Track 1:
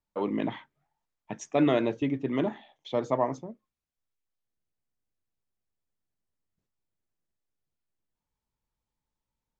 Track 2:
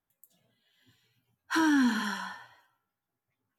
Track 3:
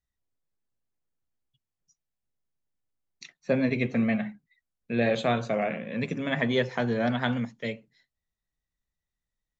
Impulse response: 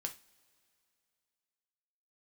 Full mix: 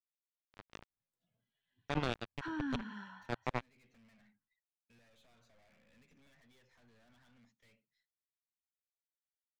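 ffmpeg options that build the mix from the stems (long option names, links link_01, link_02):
-filter_complex "[0:a]acrusher=bits=2:mix=0:aa=0.5,adelay=350,volume=-3dB[link_01];[1:a]lowpass=2900,adelay=900,volume=-15dB[link_02];[2:a]highpass=frequency=1100:poles=1,acompressor=threshold=-37dB:ratio=5,aeval=exprs='(tanh(282*val(0)+0.2)-tanh(0.2))/282':channel_layout=same,volume=-17.5dB[link_03];[link_01][link_02][link_03]amix=inputs=3:normalize=0,asubboost=boost=3:cutoff=230,alimiter=limit=-20.5dB:level=0:latency=1:release=276"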